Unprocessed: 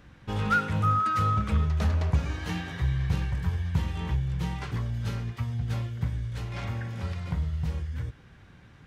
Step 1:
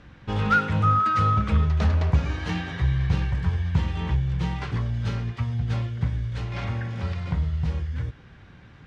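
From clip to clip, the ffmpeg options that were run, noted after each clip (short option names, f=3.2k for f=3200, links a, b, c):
-af "lowpass=5.4k,volume=4dB"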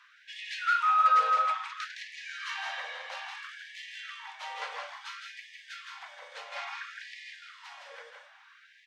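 -af "asoftclip=type=tanh:threshold=-11.5dB,aecho=1:1:163.3|201.2:0.631|0.316,afftfilt=real='re*gte(b*sr/1024,440*pow(1700/440,0.5+0.5*sin(2*PI*0.59*pts/sr)))':imag='im*gte(b*sr/1024,440*pow(1700/440,0.5+0.5*sin(2*PI*0.59*pts/sr)))':win_size=1024:overlap=0.75,volume=-1.5dB"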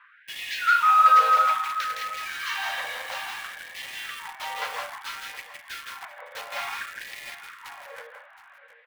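-filter_complex "[0:a]acrossover=split=2500[a][b];[b]acrusher=bits=7:mix=0:aa=0.000001[c];[a][c]amix=inputs=2:normalize=0,aecho=1:1:719:0.178,volume=6.5dB"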